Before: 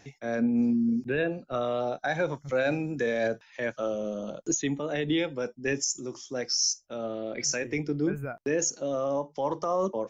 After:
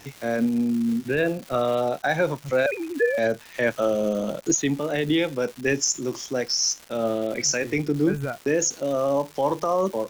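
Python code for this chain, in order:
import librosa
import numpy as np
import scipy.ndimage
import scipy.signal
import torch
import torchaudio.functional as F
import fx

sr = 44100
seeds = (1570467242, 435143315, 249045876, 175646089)

y = fx.sine_speech(x, sr, at=(2.66, 3.18))
y = fx.rider(y, sr, range_db=10, speed_s=0.5)
y = fx.dmg_crackle(y, sr, seeds[0], per_s=420.0, level_db=-37.0)
y = F.gain(torch.from_numpy(y), 5.0).numpy()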